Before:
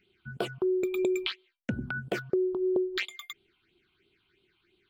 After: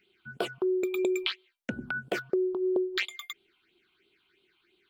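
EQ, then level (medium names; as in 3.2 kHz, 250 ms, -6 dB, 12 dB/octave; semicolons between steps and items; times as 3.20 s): peaking EQ 110 Hz -4.5 dB 1.4 oct; bass shelf 160 Hz -11 dB; +2.0 dB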